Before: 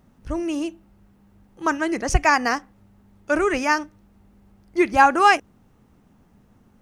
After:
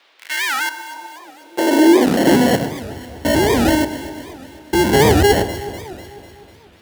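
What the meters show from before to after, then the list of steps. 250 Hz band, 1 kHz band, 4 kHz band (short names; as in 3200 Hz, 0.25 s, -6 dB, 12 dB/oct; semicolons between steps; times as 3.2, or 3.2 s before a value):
+11.0 dB, -1.0 dB, +10.5 dB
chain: stepped spectrum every 0.1 s; in parallel at -4 dB: fuzz box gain 45 dB, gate -39 dBFS; on the sum: sample-and-hold 36×; on a send: echo with dull and thin repeats by turns 0.124 s, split 1500 Hz, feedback 74%, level -10.5 dB; on the sum: high-pass sweep 2200 Hz -> 72 Hz, 0.21–3.21; band noise 330–4000 Hz -55 dBFS; record warp 78 rpm, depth 250 cents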